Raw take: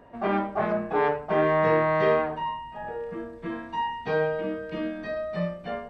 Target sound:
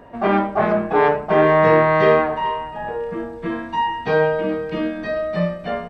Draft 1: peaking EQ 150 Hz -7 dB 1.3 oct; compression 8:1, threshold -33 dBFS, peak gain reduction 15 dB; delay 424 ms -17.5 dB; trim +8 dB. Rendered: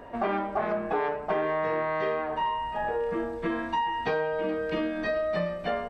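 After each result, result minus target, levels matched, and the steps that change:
compression: peak gain reduction +15 dB; 125 Hz band -4.5 dB
remove: compression 8:1, threshold -33 dBFS, peak gain reduction 15 dB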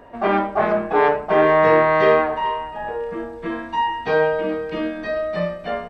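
125 Hz band -5.5 dB
remove: peaking EQ 150 Hz -7 dB 1.3 oct

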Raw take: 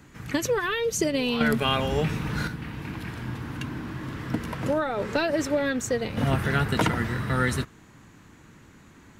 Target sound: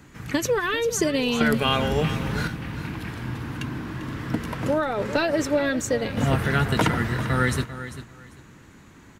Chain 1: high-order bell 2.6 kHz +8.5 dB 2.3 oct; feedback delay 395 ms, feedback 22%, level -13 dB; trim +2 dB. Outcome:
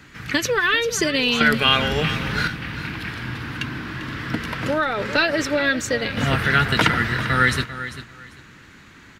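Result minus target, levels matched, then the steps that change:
2 kHz band +4.5 dB
remove: high-order bell 2.6 kHz +8.5 dB 2.3 oct

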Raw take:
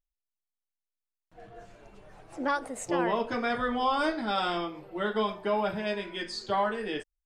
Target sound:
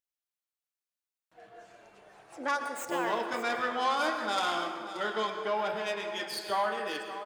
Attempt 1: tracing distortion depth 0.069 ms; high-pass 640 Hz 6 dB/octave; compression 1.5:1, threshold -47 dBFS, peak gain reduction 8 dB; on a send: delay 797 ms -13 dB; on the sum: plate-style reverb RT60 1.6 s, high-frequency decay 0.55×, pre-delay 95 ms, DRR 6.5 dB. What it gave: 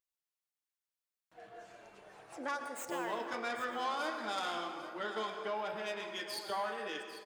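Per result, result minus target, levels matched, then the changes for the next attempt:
compression: peak gain reduction +8 dB; echo 219 ms late
remove: compression 1.5:1, threshold -47 dBFS, peak gain reduction 8 dB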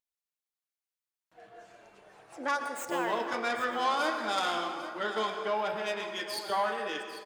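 echo 219 ms late
change: delay 578 ms -13 dB

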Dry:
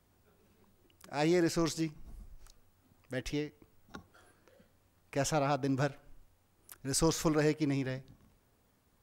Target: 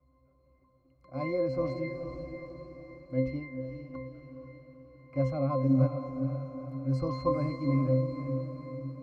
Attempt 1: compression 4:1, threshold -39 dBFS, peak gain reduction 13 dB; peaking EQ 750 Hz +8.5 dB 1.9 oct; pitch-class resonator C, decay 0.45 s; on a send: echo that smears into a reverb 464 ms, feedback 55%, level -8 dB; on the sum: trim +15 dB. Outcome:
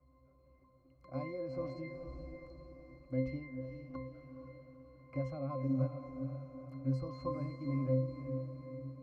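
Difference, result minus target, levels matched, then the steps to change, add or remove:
compression: peak gain reduction +13 dB
remove: compression 4:1, threshold -39 dBFS, peak gain reduction 13 dB

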